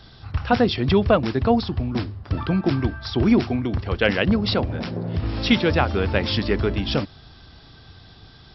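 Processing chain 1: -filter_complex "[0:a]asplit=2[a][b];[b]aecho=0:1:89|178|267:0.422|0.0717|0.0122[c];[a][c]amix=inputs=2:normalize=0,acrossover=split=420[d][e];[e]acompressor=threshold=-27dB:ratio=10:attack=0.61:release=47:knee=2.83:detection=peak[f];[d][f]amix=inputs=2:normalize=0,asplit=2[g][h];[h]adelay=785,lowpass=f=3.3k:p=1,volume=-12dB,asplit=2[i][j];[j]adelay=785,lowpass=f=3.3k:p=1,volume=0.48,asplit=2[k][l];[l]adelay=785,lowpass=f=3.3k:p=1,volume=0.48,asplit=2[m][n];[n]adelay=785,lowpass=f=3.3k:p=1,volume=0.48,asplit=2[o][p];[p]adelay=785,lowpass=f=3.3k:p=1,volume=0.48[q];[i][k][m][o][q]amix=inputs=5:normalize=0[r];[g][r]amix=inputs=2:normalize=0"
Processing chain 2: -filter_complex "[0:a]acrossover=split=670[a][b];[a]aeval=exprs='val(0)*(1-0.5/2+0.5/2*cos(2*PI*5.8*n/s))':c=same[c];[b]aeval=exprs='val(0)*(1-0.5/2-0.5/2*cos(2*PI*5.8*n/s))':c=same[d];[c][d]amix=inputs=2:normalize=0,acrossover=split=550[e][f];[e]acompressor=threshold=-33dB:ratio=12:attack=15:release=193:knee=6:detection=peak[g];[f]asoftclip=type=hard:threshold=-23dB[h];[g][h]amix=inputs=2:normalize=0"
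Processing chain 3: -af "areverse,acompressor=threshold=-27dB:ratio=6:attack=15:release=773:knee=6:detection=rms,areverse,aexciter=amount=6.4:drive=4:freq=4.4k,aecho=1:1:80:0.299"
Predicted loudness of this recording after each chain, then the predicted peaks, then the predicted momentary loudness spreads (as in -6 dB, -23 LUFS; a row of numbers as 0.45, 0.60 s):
-23.0, -30.5, -32.0 LUFS; -7.0, -17.0, -14.5 dBFS; 14, 21, 12 LU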